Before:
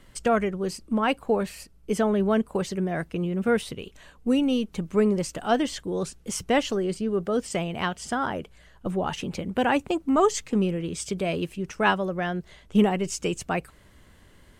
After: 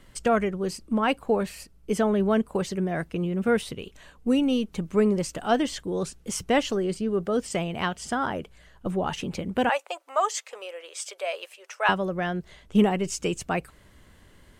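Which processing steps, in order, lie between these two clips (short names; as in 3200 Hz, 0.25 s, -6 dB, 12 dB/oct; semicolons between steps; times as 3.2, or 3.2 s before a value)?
9.69–11.89 elliptic high-pass 540 Hz, stop band 70 dB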